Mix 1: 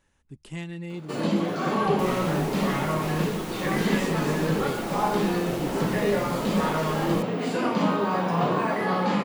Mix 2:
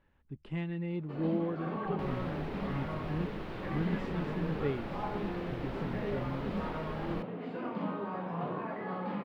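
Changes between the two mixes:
first sound −11.5 dB
master: add high-frequency loss of the air 400 metres

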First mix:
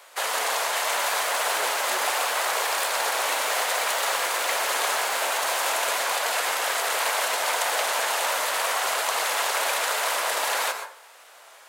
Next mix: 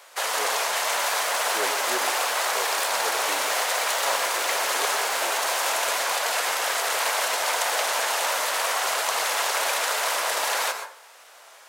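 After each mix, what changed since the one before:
speech +9.0 dB
master: add parametric band 5,600 Hz +3 dB 0.53 octaves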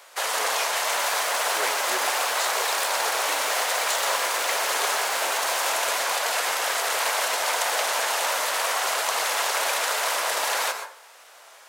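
speech: add spectral tilt +3 dB per octave
second sound: send +8.5 dB

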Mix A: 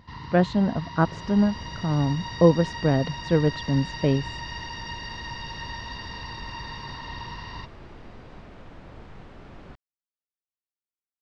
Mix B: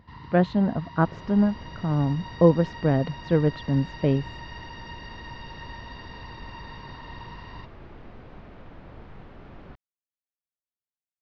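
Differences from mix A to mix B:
first sound −4.0 dB
master: add high-frequency loss of the air 160 metres

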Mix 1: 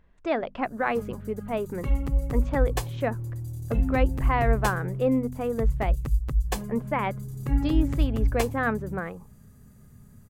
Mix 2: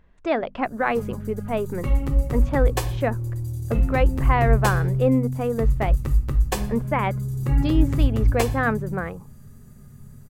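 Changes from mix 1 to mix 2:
speech +3.5 dB
reverb: on, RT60 0.55 s

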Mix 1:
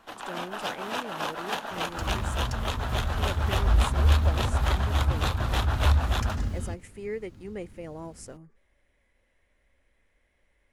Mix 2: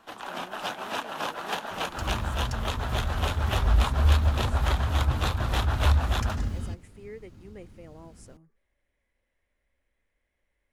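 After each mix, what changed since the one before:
speech −8.5 dB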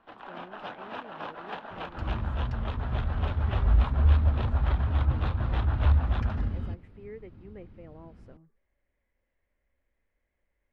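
first sound −4.5 dB
master: add high-frequency loss of the air 370 metres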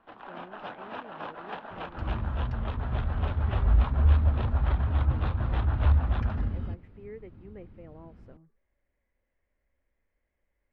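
master: add high-shelf EQ 5,900 Hz −11.5 dB

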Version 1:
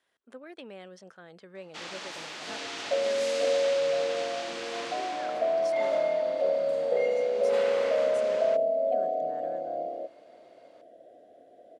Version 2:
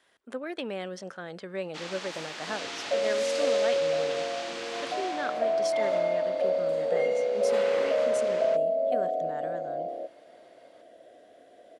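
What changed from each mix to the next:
speech +9.5 dB
reverb: on, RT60 2.0 s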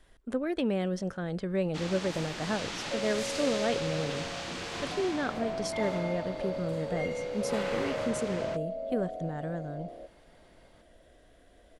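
second sound −12.0 dB
master: remove meter weighting curve A

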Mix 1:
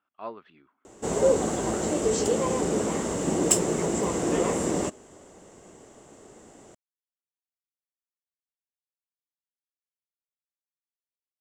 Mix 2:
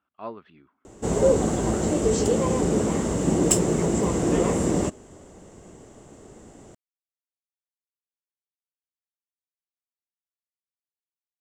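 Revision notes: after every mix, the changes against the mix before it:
master: add low-shelf EQ 210 Hz +11.5 dB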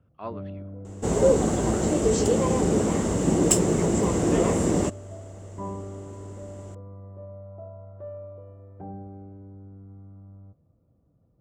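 first sound: unmuted

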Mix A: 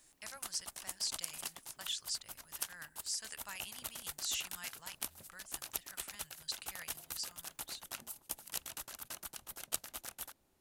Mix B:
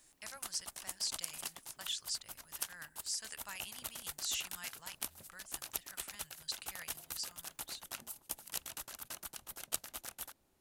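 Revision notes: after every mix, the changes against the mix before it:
nothing changed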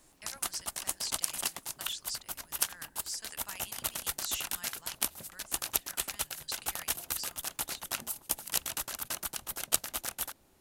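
background +9.5 dB

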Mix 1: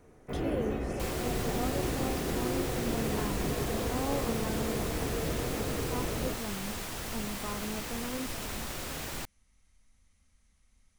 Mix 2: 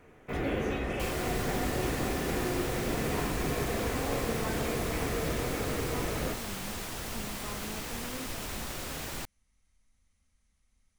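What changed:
speech −5.0 dB
first sound: add parametric band 3,200 Hz +11 dB 2.5 octaves

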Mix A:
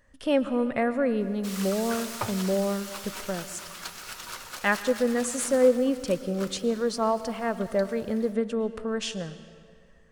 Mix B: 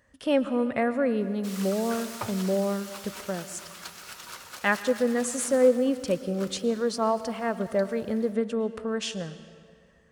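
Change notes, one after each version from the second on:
background −3.0 dB
master: add high-pass filter 63 Hz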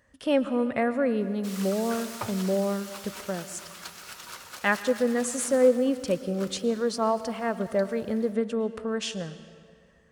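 nothing changed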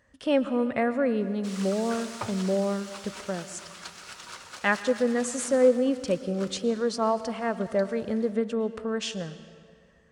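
master: add Savitzky-Golay smoothing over 9 samples

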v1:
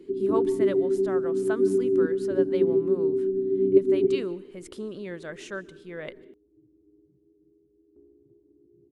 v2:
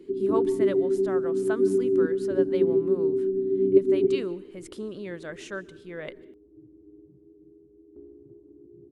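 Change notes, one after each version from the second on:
second sound +9.0 dB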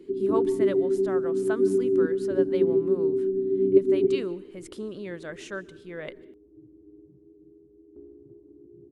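nothing changed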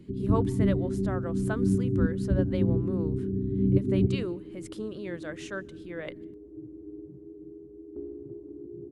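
speech: send −7.5 dB
first sound: remove high-pass with resonance 390 Hz, resonance Q 3.9
second sound +8.5 dB

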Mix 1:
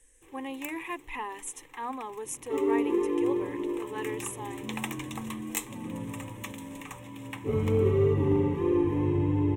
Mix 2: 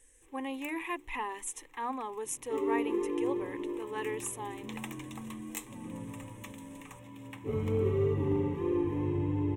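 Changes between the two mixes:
first sound −8.0 dB
second sound −5.0 dB

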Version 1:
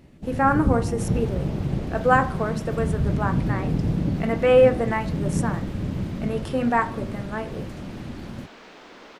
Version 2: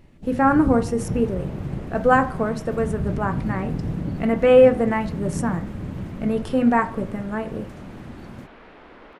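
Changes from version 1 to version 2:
speech: add low-shelf EQ 270 Hz +11.5 dB
first sound −3.5 dB
second sound: add low-pass filter 2,300 Hz 12 dB per octave

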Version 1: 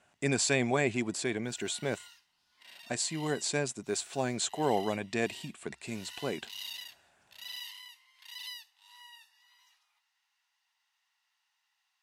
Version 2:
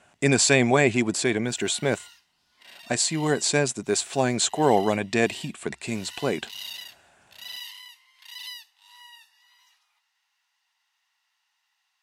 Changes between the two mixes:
speech +9.0 dB
background +4.5 dB

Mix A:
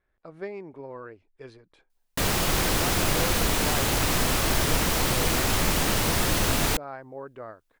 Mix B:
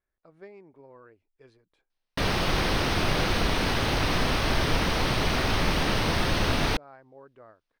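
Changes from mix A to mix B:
speech −11.0 dB
background: add Savitzky-Golay smoothing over 15 samples

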